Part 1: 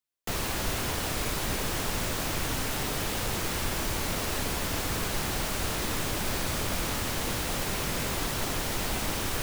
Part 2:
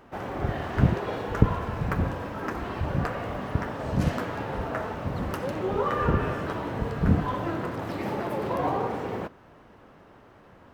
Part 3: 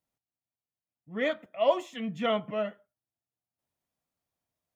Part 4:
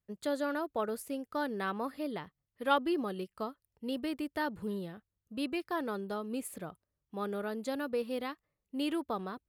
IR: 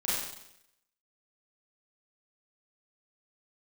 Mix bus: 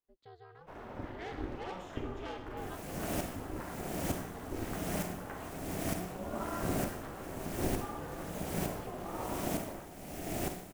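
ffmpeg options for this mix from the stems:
-filter_complex "[0:a]equalizer=f=125:t=o:w=1:g=5,equalizer=f=250:t=o:w=1:g=-4,equalizer=f=500:t=o:w=1:g=12,equalizer=f=1k:t=o:w=1:g=-11,equalizer=f=4k:t=o:w=1:g=-8,alimiter=limit=-23.5dB:level=0:latency=1:release=389,aeval=exprs='val(0)*pow(10,-28*if(lt(mod(-1.1*n/s,1),2*abs(-1.1)/1000),1-mod(-1.1*n/s,1)/(2*abs(-1.1)/1000),(mod(-1.1*n/s,1)-2*abs(-1.1)/1000)/(1-2*abs(-1.1)/1000))/20)':c=same,adelay=2300,volume=1dB,asplit=2[a][b];[b]volume=-9dB[c];[1:a]adelay=550,volume=-14dB,asplit=2[d][e];[e]volume=-9dB[f];[2:a]asoftclip=type=tanh:threshold=-29dB,volume=-9.5dB,asplit=3[g][h][i];[h]volume=-12dB[j];[3:a]lowpass=f=4.7k:w=0.5412,lowpass=f=4.7k:w=1.3066,volume=-18.5dB[k];[i]apad=whole_len=497547[l];[d][l]sidechaincompress=threshold=-59dB:ratio=8:attack=16:release=289[m];[4:a]atrim=start_sample=2205[n];[c][f][j]amix=inputs=3:normalize=0[o];[o][n]afir=irnorm=-1:irlink=0[p];[a][m][g][k][p]amix=inputs=5:normalize=0,aeval=exprs='val(0)*sin(2*PI*180*n/s)':c=same"

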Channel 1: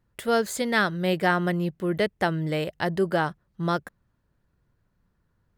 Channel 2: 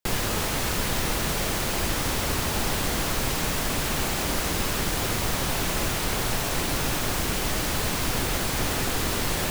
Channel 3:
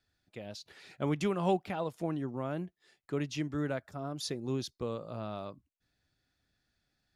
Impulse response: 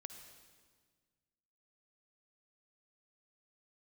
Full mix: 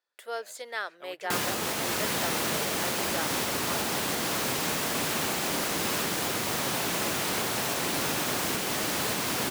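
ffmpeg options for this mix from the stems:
-filter_complex "[0:a]highpass=f=460:w=0.5412,highpass=f=460:w=1.3066,volume=-10.5dB,asplit=2[a][b];[b]volume=-23.5dB[c];[1:a]highpass=180,alimiter=limit=-18dB:level=0:latency=1:release=373,adelay=1250,volume=0dB[d];[2:a]highpass=720,volume=-7.5dB[e];[3:a]atrim=start_sample=2205[f];[c][f]afir=irnorm=-1:irlink=0[g];[a][d][e][g]amix=inputs=4:normalize=0"

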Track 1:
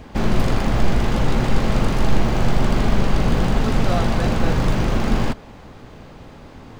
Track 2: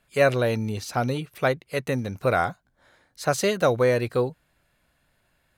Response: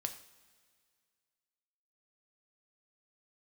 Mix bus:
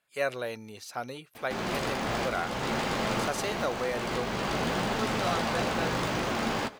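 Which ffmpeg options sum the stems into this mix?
-filter_complex "[0:a]flanger=delay=9.1:depth=8.3:regen=-42:speed=0.54:shape=sinusoidal,adelay=1350,volume=2dB[a];[1:a]volume=-7.5dB,asplit=2[b][c];[c]apad=whole_len=359338[d];[a][d]sidechaincompress=threshold=-31dB:ratio=4:attack=41:release=549[e];[e][b]amix=inputs=2:normalize=0,highpass=f=570:p=1"

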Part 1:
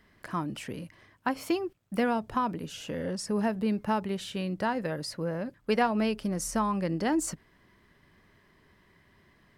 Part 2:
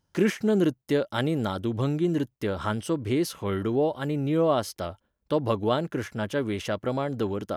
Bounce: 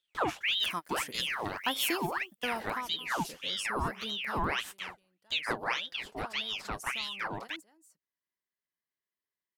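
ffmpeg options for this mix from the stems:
-filter_complex "[0:a]aemphasis=mode=production:type=riaa,asoftclip=type=tanh:threshold=-13dB,adynamicequalizer=threshold=0.00631:dfrequency=1600:dqfactor=0.7:tfrequency=1600:tqfactor=0.7:attack=5:release=100:ratio=0.375:range=2.5:mode=cutabove:tftype=highshelf,adelay=400,volume=-2dB,afade=t=out:st=2.16:d=0.75:silence=0.375837,afade=t=out:st=4.06:d=0.75:silence=0.398107,asplit=2[a][b];[b]volume=-17.5dB[c];[1:a]flanger=delay=8.1:depth=2.3:regen=-40:speed=1.6:shape=sinusoidal,aeval=exprs='val(0)*sin(2*PI*2000*n/s+2000*0.75/1.7*sin(2*PI*1.7*n/s))':c=same,volume=-2dB,asplit=2[d][e];[e]apad=whole_len=440084[f];[a][f]sidechaingate=range=-58dB:threshold=-43dB:ratio=16:detection=peak[g];[c]aecho=0:1:221:1[h];[g][d][h]amix=inputs=3:normalize=0"

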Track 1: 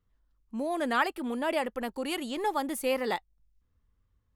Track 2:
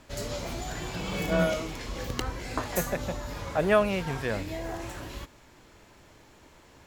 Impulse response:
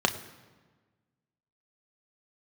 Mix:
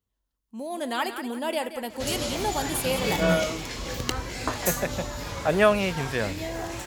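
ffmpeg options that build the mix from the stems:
-filter_complex "[0:a]bandreject=f=1.2k:w=17,volume=-7dB,asplit=3[a][b][c];[b]volume=-20.5dB[d];[c]volume=-10dB[e];[1:a]highshelf=f=7.7k:g=-8,adelay=1900,volume=-2.5dB[f];[2:a]atrim=start_sample=2205[g];[d][g]afir=irnorm=-1:irlink=0[h];[e]aecho=0:1:178|356|534|712|890:1|0.32|0.102|0.0328|0.0105[i];[a][f][h][i]amix=inputs=4:normalize=0,highpass=44,highshelf=f=3.7k:g=10.5,dynaudnorm=f=220:g=7:m=5dB"

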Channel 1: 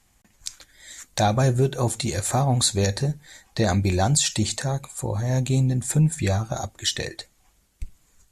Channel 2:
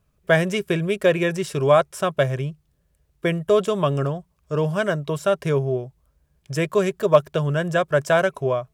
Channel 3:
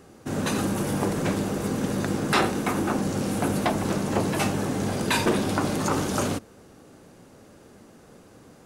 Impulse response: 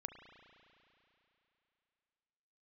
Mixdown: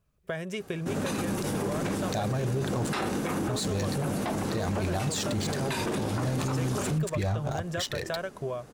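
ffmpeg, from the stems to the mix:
-filter_complex "[0:a]adynamicsmooth=sensitivity=7.5:basefreq=1k,adelay=950,volume=0.5dB,asplit=3[a][b][c];[a]atrim=end=2.93,asetpts=PTS-STARTPTS,afade=t=out:st=2.926:d=0.004:c=hsin[d];[b]atrim=start=2.93:end=3.48,asetpts=PTS-STARTPTS,volume=0[e];[c]atrim=start=3.48,asetpts=PTS-STARTPTS,afade=t=in:d=0.004:c=hsin[f];[d][e][f]concat=n=3:v=0:a=1[g];[1:a]acompressor=threshold=-23dB:ratio=10,volume=-6dB[h];[2:a]adelay=600,volume=0dB[i];[g][i]amix=inputs=2:normalize=0,alimiter=limit=-18dB:level=0:latency=1:release=26,volume=0dB[j];[h][j]amix=inputs=2:normalize=0,alimiter=limit=-21.5dB:level=0:latency=1:release=57"

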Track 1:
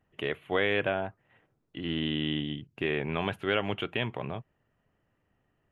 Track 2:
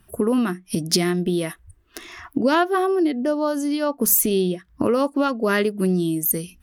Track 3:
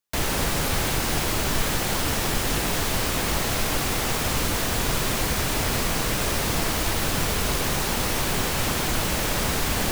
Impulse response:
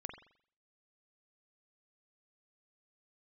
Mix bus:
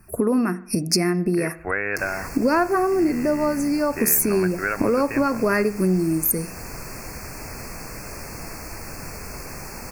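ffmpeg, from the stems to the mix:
-filter_complex "[0:a]equalizer=f=1.5k:t=o:w=0.64:g=12,adelay=1150,volume=1.5dB[a];[1:a]volume=3dB,asplit=2[b][c];[c]volume=-7dB[d];[2:a]adelay=1850,volume=-10.5dB[e];[3:a]atrim=start_sample=2205[f];[d][f]afir=irnorm=-1:irlink=0[g];[a][b][e][g]amix=inputs=4:normalize=0,asuperstop=centerf=3400:order=20:qfactor=2.1,acompressor=threshold=-26dB:ratio=1.5"

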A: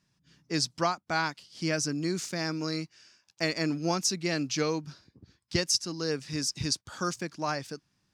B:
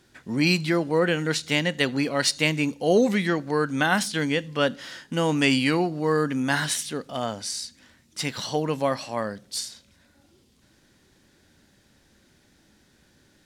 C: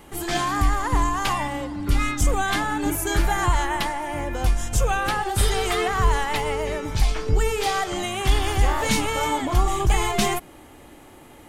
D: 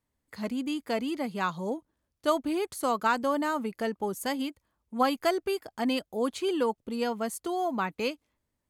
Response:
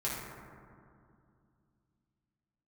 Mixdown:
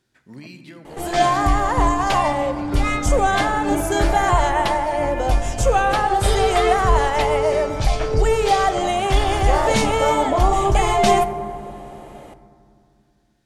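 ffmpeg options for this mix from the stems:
-filter_complex "[0:a]adelay=1450,volume=-18dB[a];[1:a]acompressor=threshold=-25dB:ratio=4,volume=-18dB,asplit=2[b][c];[c]volume=-6dB[d];[2:a]lowpass=9.2k,equalizer=f=620:t=o:w=0.82:g=12,adelay=850,volume=0dB,asplit=2[e][f];[f]volume=-14dB[g];[3:a]tremolo=f=68:d=0.919,volume=-15dB[h];[a][b][h]amix=inputs=3:normalize=0,acontrast=37,alimiter=level_in=7dB:limit=-24dB:level=0:latency=1:release=269,volume=-7dB,volume=0dB[i];[4:a]atrim=start_sample=2205[j];[d][g]amix=inputs=2:normalize=0[k];[k][j]afir=irnorm=-1:irlink=0[l];[e][i][l]amix=inputs=3:normalize=0"

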